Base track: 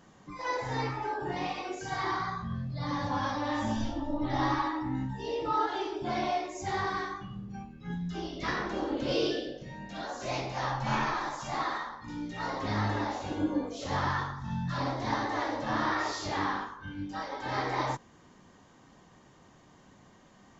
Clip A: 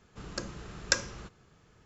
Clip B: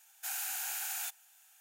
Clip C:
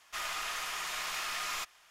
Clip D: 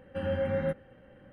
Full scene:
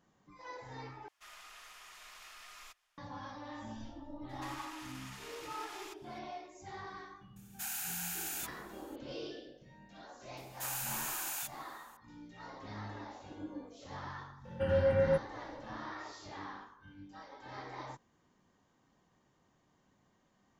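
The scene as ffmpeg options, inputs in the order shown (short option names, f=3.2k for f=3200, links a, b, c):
-filter_complex "[3:a]asplit=2[a][b];[2:a]asplit=2[c][d];[0:a]volume=-14.5dB[e];[a]asubboost=boost=5.5:cutoff=55[f];[b]alimiter=level_in=9.5dB:limit=-24dB:level=0:latency=1:release=124,volume=-9.5dB[g];[4:a]aecho=1:1:2.1:0.43[h];[e]asplit=2[i][j];[i]atrim=end=1.084[k];[f]atrim=end=1.9,asetpts=PTS-STARTPTS,volume=-17dB[l];[j]atrim=start=2.976[m];[g]atrim=end=1.9,asetpts=PTS-STARTPTS,volume=-7.5dB,afade=t=in:d=0.004:c=hsin,afade=t=out:st=1.896:d=0.004:c=hsin,adelay=189189S[n];[c]atrim=end=1.6,asetpts=PTS-STARTPTS,volume=-2dB,afade=t=in:d=0.004:c=hsin,afade=t=out:st=1.596:d=0.004:c=hsin,adelay=7360[o];[d]atrim=end=1.6,asetpts=PTS-STARTPTS,volume=-1.5dB,afade=t=in:d=0.004:c=hsin,afade=t=out:st=1.596:d=0.004:c=hsin,adelay=10370[p];[h]atrim=end=1.32,asetpts=PTS-STARTPTS,volume=-0.5dB,afade=t=in:d=0.004:c=hsin,afade=t=out:st=1.316:d=0.004:c=hsin,adelay=14450[q];[k][l]acrossfade=d=0.004:c1=hsin:c2=hsin[r];[r][m]acrossfade=d=0.004:c1=hsin:c2=hsin[s];[s][n][o][p][q]amix=inputs=5:normalize=0"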